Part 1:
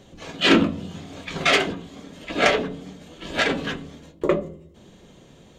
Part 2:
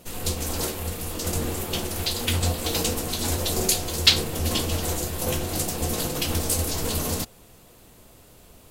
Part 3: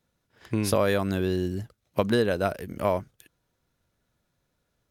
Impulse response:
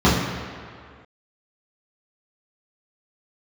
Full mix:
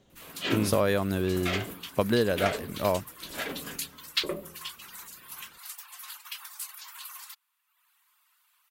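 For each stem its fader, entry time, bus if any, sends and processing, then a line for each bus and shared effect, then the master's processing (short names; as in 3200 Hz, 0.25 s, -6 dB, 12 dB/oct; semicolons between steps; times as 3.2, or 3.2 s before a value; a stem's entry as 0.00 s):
-13.5 dB, 0.00 s, no send, dry
-6.5 dB, 0.10 s, no send, steep high-pass 1000 Hz 48 dB/oct; reverb removal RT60 0.99 s; bell 6700 Hz -9 dB 1.6 oct
-1.5 dB, 0.00 s, no send, dry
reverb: off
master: dry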